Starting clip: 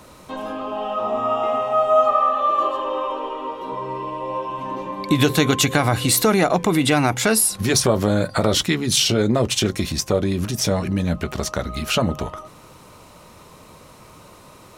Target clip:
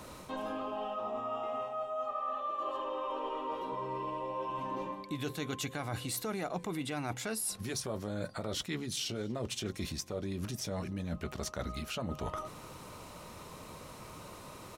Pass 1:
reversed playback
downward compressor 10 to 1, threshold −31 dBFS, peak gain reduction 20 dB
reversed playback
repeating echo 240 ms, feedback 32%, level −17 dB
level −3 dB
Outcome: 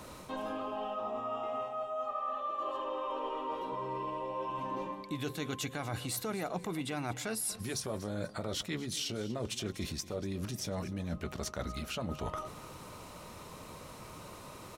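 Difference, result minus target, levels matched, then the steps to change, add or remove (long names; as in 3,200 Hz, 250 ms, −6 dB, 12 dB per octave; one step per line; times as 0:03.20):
echo-to-direct +10 dB
change: repeating echo 240 ms, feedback 32%, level −27 dB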